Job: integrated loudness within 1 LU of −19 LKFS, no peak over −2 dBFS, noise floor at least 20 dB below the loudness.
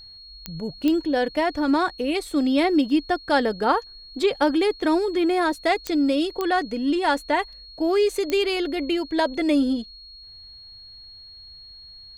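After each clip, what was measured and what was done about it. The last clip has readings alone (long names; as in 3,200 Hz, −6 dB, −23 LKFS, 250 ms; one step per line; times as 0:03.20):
number of clicks 5; interfering tone 4,300 Hz; level of the tone −42 dBFS; integrated loudness −23.0 LKFS; sample peak −7.0 dBFS; target loudness −19.0 LKFS
→ click removal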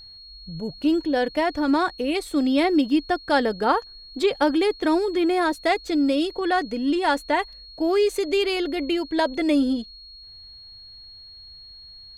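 number of clicks 0; interfering tone 4,300 Hz; level of the tone −42 dBFS
→ notch filter 4,300 Hz, Q 30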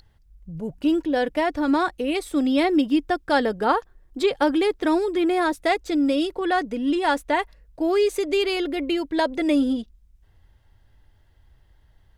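interfering tone none found; integrated loudness −23.0 LKFS; sample peak −7.0 dBFS; target loudness −19.0 LKFS
→ level +4 dB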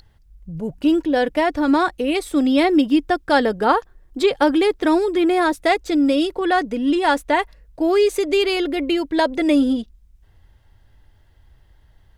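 integrated loudness −19.0 LKFS; sample peak −3.0 dBFS; background noise floor −54 dBFS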